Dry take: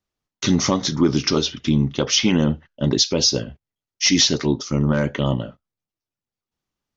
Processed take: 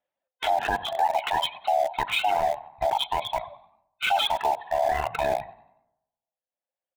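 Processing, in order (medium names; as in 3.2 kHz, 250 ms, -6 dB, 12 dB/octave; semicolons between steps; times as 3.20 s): split-band scrambler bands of 500 Hz; resampled via 8 kHz; treble shelf 2.9 kHz -4.5 dB; frequency-shifting echo 93 ms, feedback 43%, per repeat +43 Hz, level -11 dB; reverberation RT60 1.0 s, pre-delay 3 ms, DRR 14.5 dB; reverb removal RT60 1.9 s; bass shelf 190 Hz -10.5 dB; in parallel at -6 dB: small samples zeroed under -24 dBFS; on the sum: peak limiter -14.5 dBFS, peak gain reduction 10 dB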